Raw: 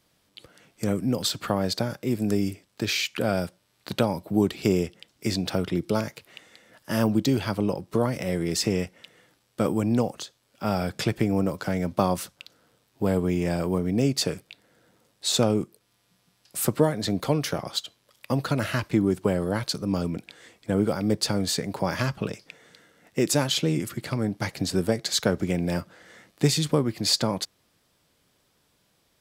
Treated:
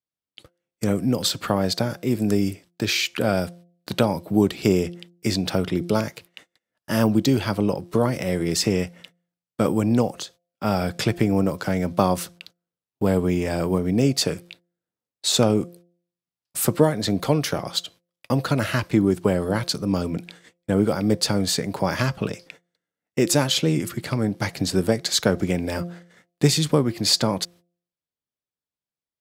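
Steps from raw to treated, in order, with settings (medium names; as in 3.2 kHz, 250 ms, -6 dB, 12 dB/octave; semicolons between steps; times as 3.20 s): gate -48 dBFS, range -34 dB; de-hum 173.9 Hz, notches 4; trim +3.5 dB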